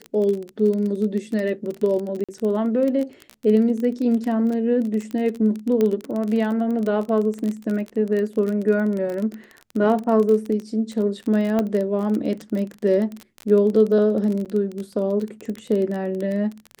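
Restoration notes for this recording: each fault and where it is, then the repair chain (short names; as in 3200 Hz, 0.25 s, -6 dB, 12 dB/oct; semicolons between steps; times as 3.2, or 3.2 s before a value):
crackle 25/s -25 dBFS
2.24–2.29 gap 46 ms
5.81 pop -11 dBFS
11.59 pop -11 dBFS
14.45–14.46 gap 7.6 ms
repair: de-click; interpolate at 2.24, 46 ms; interpolate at 14.45, 7.6 ms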